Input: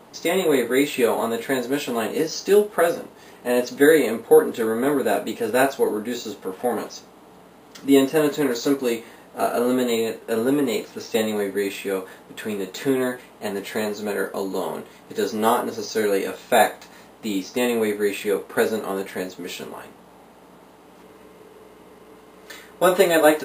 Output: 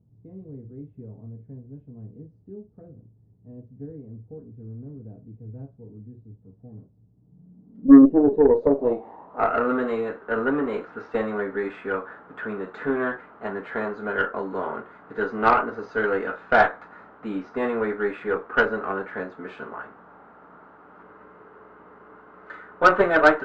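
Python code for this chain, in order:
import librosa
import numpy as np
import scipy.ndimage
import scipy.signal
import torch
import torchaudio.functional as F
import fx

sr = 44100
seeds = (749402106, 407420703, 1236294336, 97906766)

y = fx.filter_sweep_lowpass(x, sr, from_hz=110.0, to_hz=1400.0, start_s=7.08, end_s=9.6, q=5.0)
y = fx.cheby_harmonics(y, sr, harmonics=(6, 7), levels_db=(-24, -42), full_scale_db=3.0)
y = F.gain(torch.from_numpy(y), -4.0).numpy()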